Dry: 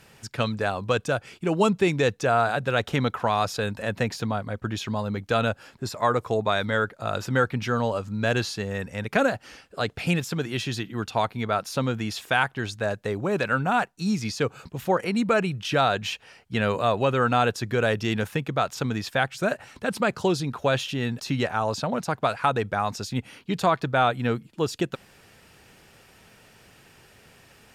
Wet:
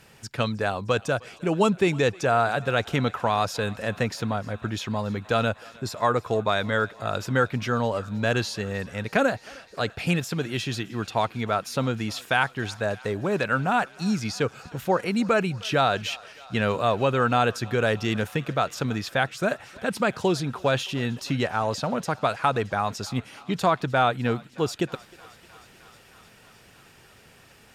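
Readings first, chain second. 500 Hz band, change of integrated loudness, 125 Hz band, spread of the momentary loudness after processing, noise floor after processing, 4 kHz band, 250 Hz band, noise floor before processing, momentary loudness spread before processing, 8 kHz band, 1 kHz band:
0.0 dB, 0.0 dB, 0.0 dB, 8 LU, -53 dBFS, 0.0 dB, 0.0 dB, -55 dBFS, 8 LU, 0.0 dB, 0.0 dB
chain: thinning echo 310 ms, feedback 84%, high-pass 520 Hz, level -22 dB

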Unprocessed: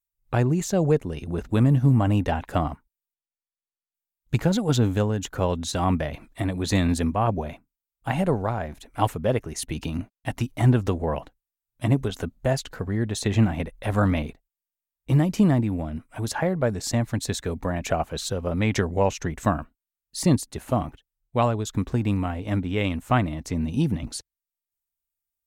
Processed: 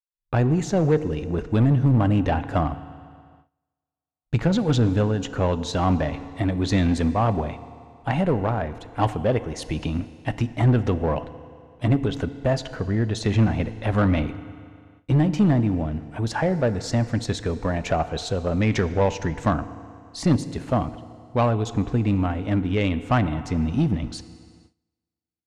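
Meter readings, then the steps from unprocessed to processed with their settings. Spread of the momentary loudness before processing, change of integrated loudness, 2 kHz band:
10 LU, +1.5 dB, +1.0 dB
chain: FDN reverb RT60 2.4 s, low-frequency decay 0.85×, high-frequency decay 0.9×, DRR 13.5 dB; gate with hold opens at -44 dBFS; in parallel at -7.5 dB: wavefolder -20 dBFS; on the sum: low-pass 6.4 kHz 12 dB/octave; treble shelf 4.7 kHz -6 dB

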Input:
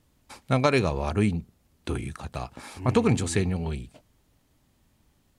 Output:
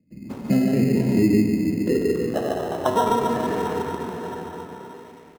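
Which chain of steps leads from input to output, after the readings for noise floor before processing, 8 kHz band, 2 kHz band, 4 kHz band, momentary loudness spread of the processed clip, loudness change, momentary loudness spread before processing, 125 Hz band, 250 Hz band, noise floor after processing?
-67 dBFS, -2.0 dB, -1.0 dB, 0.0 dB, 17 LU, +4.5 dB, 14 LU, 0.0 dB, +8.0 dB, -47 dBFS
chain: coarse spectral quantiser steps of 30 dB; treble shelf 2 kHz -10.5 dB; trance gate ".xxxxx.x.x.xxxx" 144 bpm -24 dB; band-pass sweep 200 Hz -> 2 kHz, 0.79–4.11 s; on a send: delay 146 ms -3 dB; on the sum: plate-style reverb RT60 2.4 s, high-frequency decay 0.85×, DRR -2 dB; in parallel at -5 dB: sample-and-hold 19×; on the sum: three bands compressed up and down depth 70%; trim +6.5 dB

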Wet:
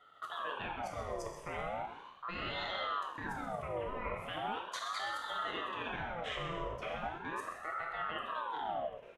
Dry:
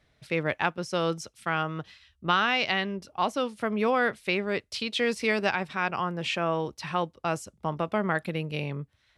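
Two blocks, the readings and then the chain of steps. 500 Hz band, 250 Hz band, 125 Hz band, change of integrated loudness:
-12.5 dB, -17.0 dB, -14.5 dB, -11.0 dB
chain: octave divider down 2 oct, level +1 dB; treble shelf 4.6 kHz -11 dB; in parallel at -1 dB: compression, threshold -36 dBFS, peak gain reduction 15.5 dB; on the sum: static phaser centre 1.1 kHz, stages 6; level held to a coarse grid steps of 22 dB; on a send: frequency-shifting echo 129 ms, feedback 46%, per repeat -61 Hz, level -12 dB; on the sum: gated-style reverb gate 360 ms falling, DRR -0.5 dB; ring modulator with a swept carrier 920 Hz, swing 45%, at 0.38 Hz; trim +4.5 dB

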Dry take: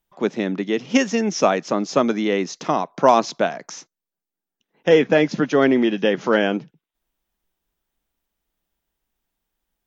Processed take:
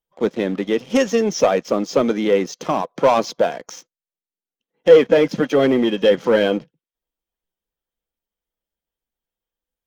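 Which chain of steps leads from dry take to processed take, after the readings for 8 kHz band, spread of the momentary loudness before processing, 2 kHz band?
no reading, 9 LU, -2.0 dB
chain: coarse spectral quantiser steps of 15 dB; waveshaping leveller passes 2; small resonant body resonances 500/3200 Hz, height 9 dB, ringing for 35 ms; trim -6.5 dB

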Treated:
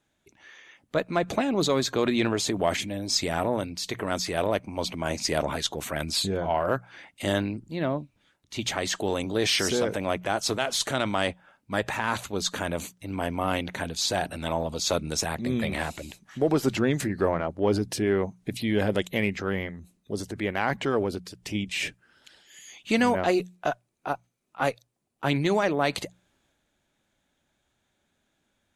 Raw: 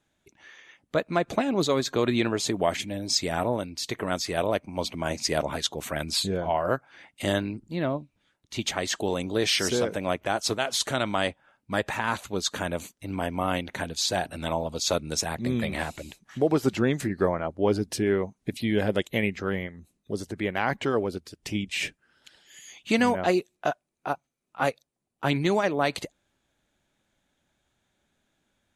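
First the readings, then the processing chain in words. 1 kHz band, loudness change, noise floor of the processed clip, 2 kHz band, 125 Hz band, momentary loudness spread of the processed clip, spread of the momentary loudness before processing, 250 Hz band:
0.0 dB, 0.0 dB, -75 dBFS, 0.0 dB, +0.5 dB, 9 LU, 9 LU, 0.0 dB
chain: hum notches 60/120/180 Hz; transient shaper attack -1 dB, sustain +4 dB; Chebyshev shaper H 6 -35 dB, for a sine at -10 dBFS

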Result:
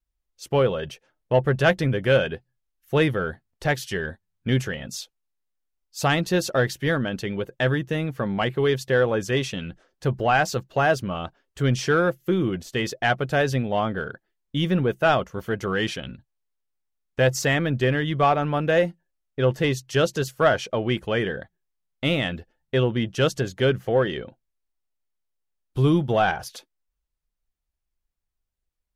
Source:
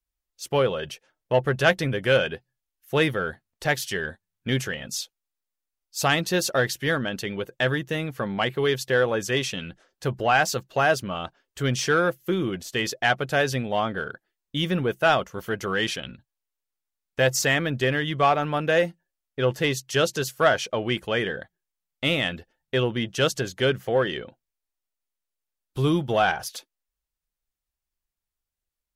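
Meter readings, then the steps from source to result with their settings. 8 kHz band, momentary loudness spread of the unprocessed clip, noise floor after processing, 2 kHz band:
-4.0 dB, 12 LU, -81 dBFS, -1.0 dB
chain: tilt EQ -1.5 dB/octave; vibrato 1.5 Hz 20 cents

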